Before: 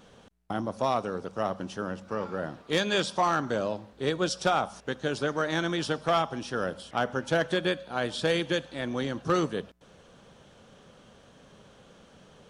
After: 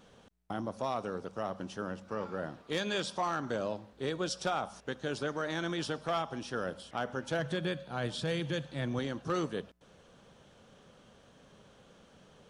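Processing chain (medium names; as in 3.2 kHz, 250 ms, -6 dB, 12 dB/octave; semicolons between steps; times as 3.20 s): 7.39–8.99 s: peaking EQ 140 Hz +13 dB 0.59 oct; peak limiter -19.5 dBFS, peak gain reduction 7.5 dB; trim -4.5 dB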